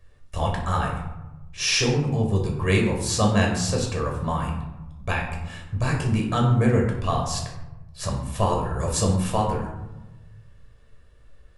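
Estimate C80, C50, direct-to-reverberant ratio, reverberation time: 7.5 dB, 5.0 dB, -0.5 dB, 1.0 s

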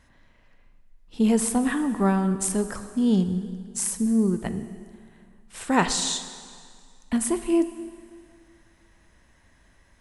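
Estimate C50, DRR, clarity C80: 11.0 dB, 10.0 dB, 12.5 dB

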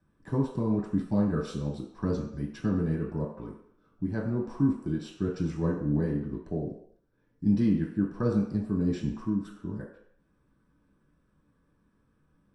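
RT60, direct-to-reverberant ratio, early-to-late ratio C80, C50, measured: no single decay rate, -6.0 dB, 7.5 dB, 4.5 dB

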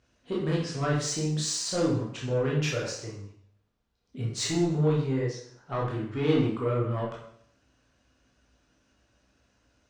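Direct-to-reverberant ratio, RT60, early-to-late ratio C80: -5.0 dB, 0.60 s, 6.5 dB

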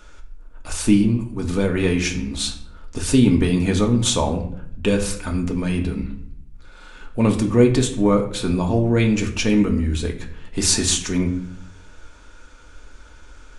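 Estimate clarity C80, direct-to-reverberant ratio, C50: 13.5 dB, 1.5 dB, 10.5 dB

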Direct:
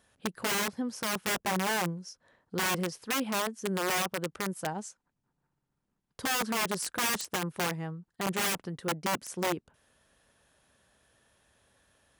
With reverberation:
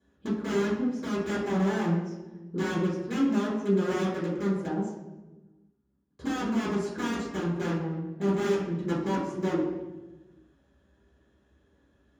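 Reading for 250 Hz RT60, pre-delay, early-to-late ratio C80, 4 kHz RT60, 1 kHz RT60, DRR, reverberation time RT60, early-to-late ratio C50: 1.5 s, 3 ms, 4.0 dB, 0.80 s, 1.0 s, -14.5 dB, 1.2 s, 1.0 dB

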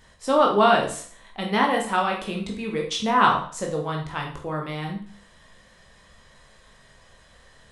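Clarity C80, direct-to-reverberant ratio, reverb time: 11.0 dB, 0.0 dB, 0.50 s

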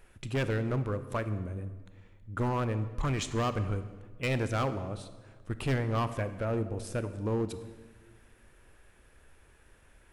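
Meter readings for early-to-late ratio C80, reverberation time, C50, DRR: 13.5 dB, 1.4 s, 12.5 dB, 11.0 dB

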